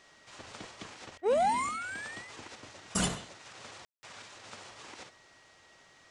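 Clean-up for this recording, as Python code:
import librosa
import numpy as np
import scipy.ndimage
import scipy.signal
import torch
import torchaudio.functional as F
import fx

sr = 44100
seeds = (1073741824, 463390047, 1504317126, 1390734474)

y = fx.fix_declip(x, sr, threshold_db=-19.0)
y = fx.notch(y, sr, hz=1900.0, q=30.0)
y = fx.fix_ambience(y, sr, seeds[0], print_start_s=5.46, print_end_s=5.96, start_s=3.85, end_s=4.03)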